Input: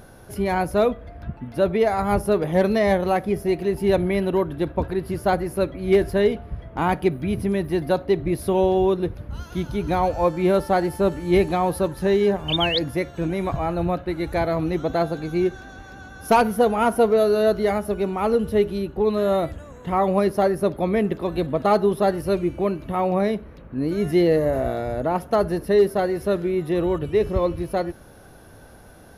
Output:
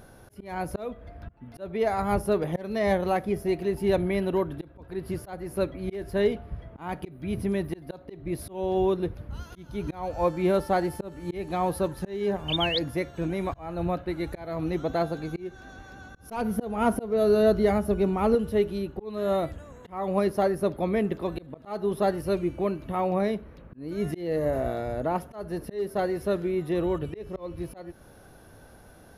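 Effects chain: 16.14–18.35 low shelf 330 Hz +8.5 dB; auto swell 0.312 s; gain -4.5 dB

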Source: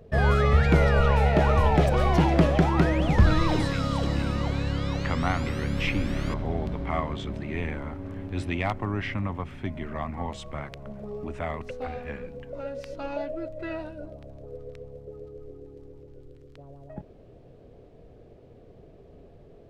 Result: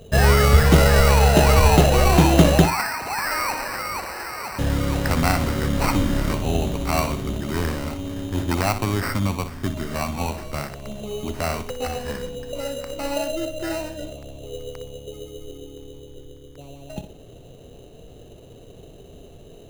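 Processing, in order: 2.65–4.59 steep high-pass 740 Hz 72 dB/oct; sample-rate reducer 3400 Hz, jitter 0%; on a send: flutter echo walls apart 10.4 m, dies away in 0.33 s; on the sum: gain +6 dB

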